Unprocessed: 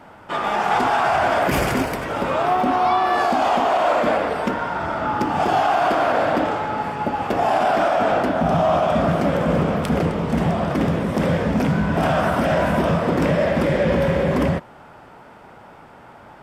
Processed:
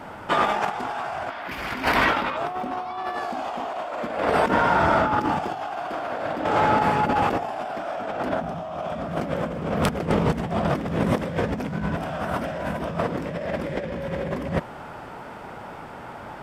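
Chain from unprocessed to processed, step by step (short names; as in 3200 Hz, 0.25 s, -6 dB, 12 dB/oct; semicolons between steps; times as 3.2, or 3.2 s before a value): 1.3–2.37 graphic EQ 125/250/500/1000/2000/4000/8000 Hz -7/+3/-5/+5/+6/+8/-7 dB; negative-ratio compressor -24 dBFS, ratio -0.5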